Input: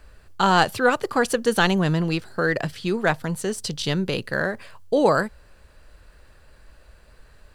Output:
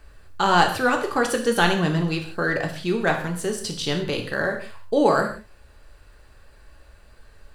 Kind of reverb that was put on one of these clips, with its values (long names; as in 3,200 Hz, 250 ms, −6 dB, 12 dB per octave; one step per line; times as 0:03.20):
reverb whose tail is shaped and stops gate 200 ms falling, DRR 2.5 dB
level −1.5 dB